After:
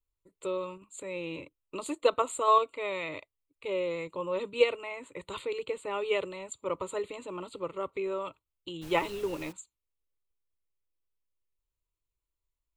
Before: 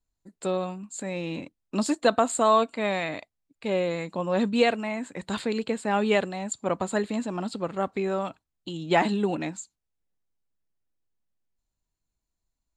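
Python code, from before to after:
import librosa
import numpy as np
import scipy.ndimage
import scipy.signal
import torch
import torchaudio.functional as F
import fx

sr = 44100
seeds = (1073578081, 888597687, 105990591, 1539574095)

p1 = fx.level_steps(x, sr, step_db=19)
p2 = x + F.gain(torch.from_numpy(p1), -1.0).numpy()
p3 = fx.fixed_phaser(p2, sr, hz=1100.0, stages=8)
p4 = fx.dmg_noise_colour(p3, sr, seeds[0], colour='pink', level_db=-44.0, at=(8.81, 9.51), fade=0.02)
y = F.gain(torch.from_numpy(p4), -5.0).numpy()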